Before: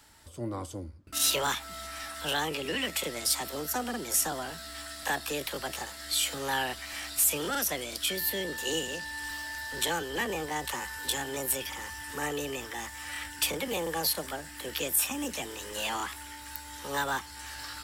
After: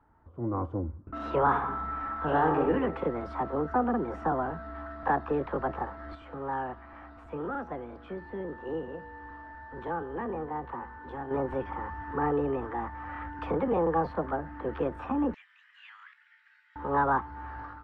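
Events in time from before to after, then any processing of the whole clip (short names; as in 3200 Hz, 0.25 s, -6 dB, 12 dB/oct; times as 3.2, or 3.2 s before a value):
1.45–2.7 reverb throw, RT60 0.92 s, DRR 1.5 dB
6.15–11.31 resonator 120 Hz, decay 1.6 s
15.34–16.76 steep high-pass 1900 Hz
whole clip: Chebyshev low-pass 1200 Hz, order 3; notch 590 Hz, Q 12; AGC gain up to 10.5 dB; gain -2.5 dB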